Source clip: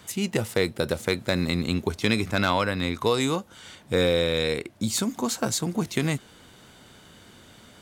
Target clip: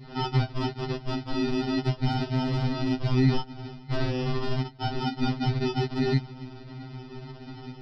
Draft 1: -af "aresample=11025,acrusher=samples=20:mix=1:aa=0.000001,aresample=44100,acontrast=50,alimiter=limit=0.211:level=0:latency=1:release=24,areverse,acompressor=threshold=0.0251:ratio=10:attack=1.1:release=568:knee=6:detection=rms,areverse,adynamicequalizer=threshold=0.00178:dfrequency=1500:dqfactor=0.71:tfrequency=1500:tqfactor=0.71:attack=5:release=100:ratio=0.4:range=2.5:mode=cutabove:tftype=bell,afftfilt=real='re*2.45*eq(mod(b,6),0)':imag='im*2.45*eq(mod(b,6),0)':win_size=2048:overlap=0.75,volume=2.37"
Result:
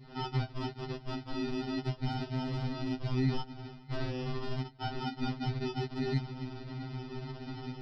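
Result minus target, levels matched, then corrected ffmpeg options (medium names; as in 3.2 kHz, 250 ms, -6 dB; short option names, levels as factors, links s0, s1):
compression: peak gain reduction +8 dB
-af "aresample=11025,acrusher=samples=20:mix=1:aa=0.000001,aresample=44100,acontrast=50,alimiter=limit=0.211:level=0:latency=1:release=24,areverse,acompressor=threshold=0.0708:ratio=10:attack=1.1:release=568:knee=6:detection=rms,areverse,adynamicequalizer=threshold=0.00178:dfrequency=1500:dqfactor=0.71:tfrequency=1500:tqfactor=0.71:attack=5:release=100:ratio=0.4:range=2.5:mode=cutabove:tftype=bell,afftfilt=real='re*2.45*eq(mod(b,6),0)':imag='im*2.45*eq(mod(b,6),0)':win_size=2048:overlap=0.75,volume=2.37"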